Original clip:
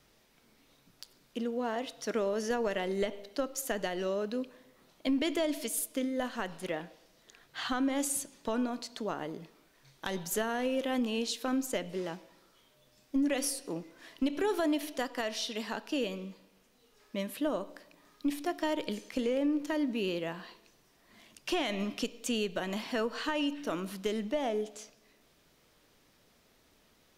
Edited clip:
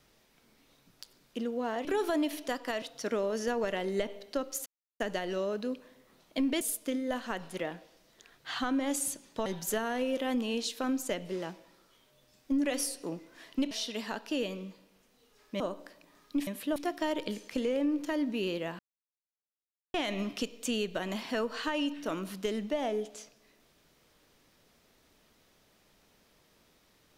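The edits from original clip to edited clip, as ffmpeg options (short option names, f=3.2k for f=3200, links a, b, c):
-filter_complex "[0:a]asplit=12[a][b][c][d][e][f][g][h][i][j][k][l];[a]atrim=end=1.852[m];[b]atrim=start=14.348:end=15.322[n];[c]atrim=start=1.848:end=3.69,asetpts=PTS-STARTPTS,afade=t=out:st=1.838:d=0.004:c=hsin,apad=pad_dur=0.34[o];[d]atrim=start=3.69:end=5.302,asetpts=PTS-STARTPTS,afade=t=in:d=0.004:c=hsin[p];[e]atrim=start=5.698:end=8.552[q];[f]atrim=start=10.098:end=14.352[r];[g]atrim=start=15.318:end=17.212[s];[h]atrim=start=17.498:end=18.372[t];[i]atrim=start=17.208:end=17.502[u];[j]atrim=start=18.368:end=20.4,asetpts=PTS-STARTPTS,afade=t=out:st=2.028:d=0.004:c=hsin[v];[k]atrim=start=20.4:end=21.55,asetpts=PTS-STARTPTS,volume=0[w];[l]atrim=start=21.55,asetpts=PTS-STARTPTS,afade=t=in:d=0.004:c=hsin[x];[m][n]acrossfade=d=0.004:c1=hsin:c2=hsin[y];[o][p]concat=n=2:v=0:a=1[z];[y][z]acrossfade=d=0.004:c1=hsin:c2=hsin[aa];[aa][q]acrossfade=d=0.004:c1=hsin:c2=hsin[ab];[ab][r]acrossfade=d=0.004:c1=hsin:c2=hsin[ac];[ac][s]acrossfade=d=0.004:c1=hsin:c2=hsin[ad];[ad][t]acrossfade=d=0.004:c1=hsin:c2=hsin[ae];[ae][u]acrossfade=d=0.004:c1=hsin:c2=hsin[af];[v][w][x]concat=n=3:v=0:a=1[ag];[af][ag]acrossfade=d=0.004:c1=hsin:c2=hsin"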